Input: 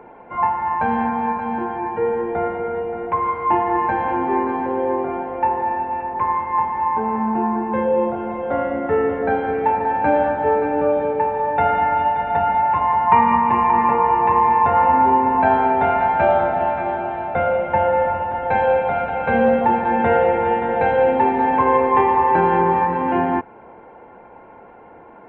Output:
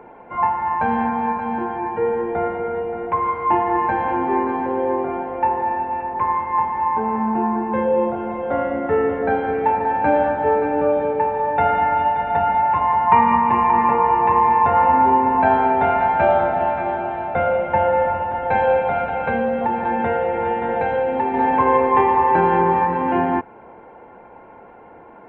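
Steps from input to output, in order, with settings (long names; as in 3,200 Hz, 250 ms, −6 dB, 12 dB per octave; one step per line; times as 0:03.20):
0:19.13–0:21.34: downward compressor, threshold −17 dBFS, peak gain reduction 6 dB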